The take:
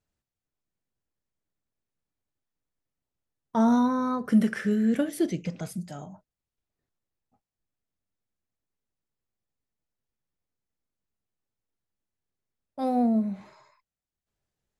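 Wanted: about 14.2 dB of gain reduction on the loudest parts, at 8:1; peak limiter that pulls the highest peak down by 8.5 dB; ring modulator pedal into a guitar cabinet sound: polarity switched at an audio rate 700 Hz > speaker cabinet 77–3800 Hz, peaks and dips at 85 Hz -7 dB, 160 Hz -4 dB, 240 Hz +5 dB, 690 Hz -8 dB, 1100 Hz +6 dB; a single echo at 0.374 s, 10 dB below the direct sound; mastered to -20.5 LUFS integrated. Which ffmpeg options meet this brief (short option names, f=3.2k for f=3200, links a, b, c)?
-af "acompressor=threshold=-30dB:ratio=8,alimiter=level_in=4.5dB:limit=-24dB:level=0:latency=1,volume=-4.5dB,aecho=1:1:374:0.316,aeval=exprs='val(0)*sgn(sin(2*PI*700*n/s))':c=same,highpass=77,equalizer=f=85:t=q:w=4:g=-7,equalizer=f=160:t=q:w=4:g=-4,equalizer=f=240:t=q:w=4:g=5,equalizer=f=690:t=q:w=4:g=-8,equalizer=f=1.1k:t=q:w=4:g=6,lowpass=f=3.8k:w=0.5412,lowpass=f=3.8k:w=1.3066,volume=15.5dB"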